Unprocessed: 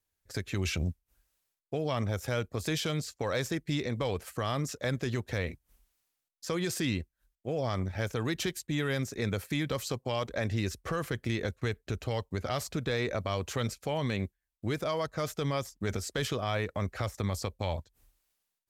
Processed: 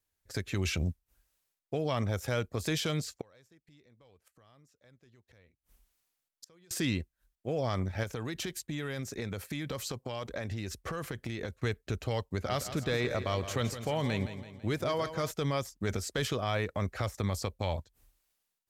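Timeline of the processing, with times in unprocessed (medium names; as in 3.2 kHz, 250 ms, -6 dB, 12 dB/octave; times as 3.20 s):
3.21–6.71 s: inverted gate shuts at -34 dBFS, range -30 dB
8.03–11.53 s: compression, threshold -32 dBFS
12.27–15.31 s: feedback delay 166 ms, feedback 48%, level -11 dB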